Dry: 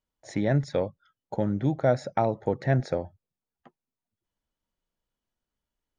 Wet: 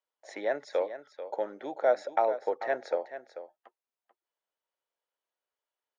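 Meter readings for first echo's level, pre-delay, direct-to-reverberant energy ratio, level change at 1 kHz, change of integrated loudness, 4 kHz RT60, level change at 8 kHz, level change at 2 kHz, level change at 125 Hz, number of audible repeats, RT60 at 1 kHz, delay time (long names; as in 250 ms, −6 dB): −12.0 dB, no reverb audible, no reverb audible, 0.0 dB, −4.0 dB, no reverb audible, can't be measured, −1.0 dB, below −35 dB, 1, no reverb audible, 439 ms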